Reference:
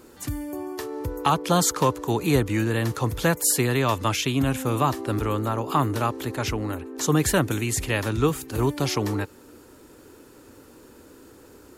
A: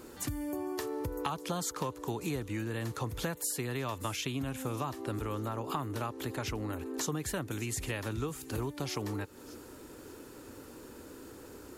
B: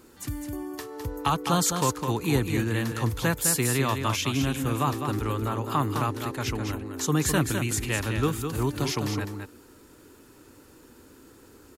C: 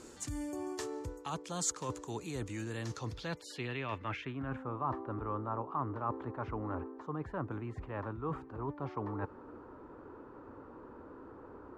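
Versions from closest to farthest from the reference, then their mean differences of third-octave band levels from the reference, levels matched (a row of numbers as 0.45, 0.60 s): B, A, C; 3.0, 5.0, 9.0 dB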